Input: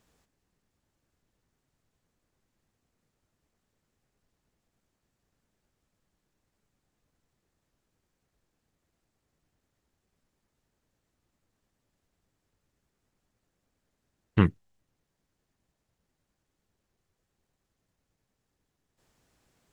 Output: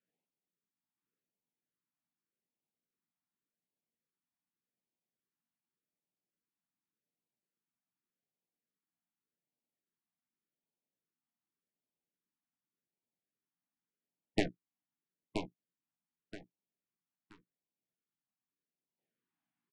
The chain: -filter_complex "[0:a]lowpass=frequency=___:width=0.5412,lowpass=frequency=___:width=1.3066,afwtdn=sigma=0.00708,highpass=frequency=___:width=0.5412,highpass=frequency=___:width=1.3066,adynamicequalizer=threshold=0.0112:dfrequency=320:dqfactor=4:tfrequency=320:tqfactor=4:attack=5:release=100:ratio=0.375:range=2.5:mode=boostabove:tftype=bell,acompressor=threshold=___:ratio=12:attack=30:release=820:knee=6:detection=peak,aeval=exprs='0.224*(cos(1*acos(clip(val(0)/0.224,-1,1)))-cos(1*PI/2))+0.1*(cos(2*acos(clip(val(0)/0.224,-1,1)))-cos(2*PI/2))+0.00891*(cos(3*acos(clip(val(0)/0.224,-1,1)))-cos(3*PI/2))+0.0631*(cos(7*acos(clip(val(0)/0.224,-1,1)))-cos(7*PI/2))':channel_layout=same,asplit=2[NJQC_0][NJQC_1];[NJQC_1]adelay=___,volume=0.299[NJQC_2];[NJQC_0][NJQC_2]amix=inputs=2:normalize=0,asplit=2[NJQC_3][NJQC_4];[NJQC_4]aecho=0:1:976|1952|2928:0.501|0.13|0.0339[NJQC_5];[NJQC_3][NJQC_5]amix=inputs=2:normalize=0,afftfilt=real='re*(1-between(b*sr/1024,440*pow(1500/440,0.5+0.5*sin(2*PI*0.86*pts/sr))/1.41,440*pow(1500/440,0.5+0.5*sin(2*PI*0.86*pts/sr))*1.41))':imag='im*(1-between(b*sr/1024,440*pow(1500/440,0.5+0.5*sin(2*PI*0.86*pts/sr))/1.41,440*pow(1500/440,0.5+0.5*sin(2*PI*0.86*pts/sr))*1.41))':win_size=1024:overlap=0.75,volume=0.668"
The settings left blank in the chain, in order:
3.3k, 3.3k, 160, 160, 0.0631, 17